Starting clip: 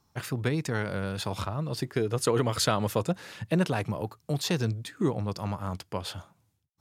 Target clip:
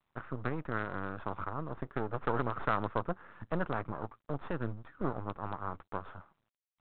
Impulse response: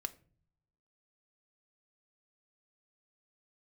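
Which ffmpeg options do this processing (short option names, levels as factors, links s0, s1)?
-af "aeval=exprs='max(val(0),0)':c=same,lowpass=f=1300:t=q:w=2.8,volume=0.531" -ar 8000 -c:a adpcm_g726 -b:a 40k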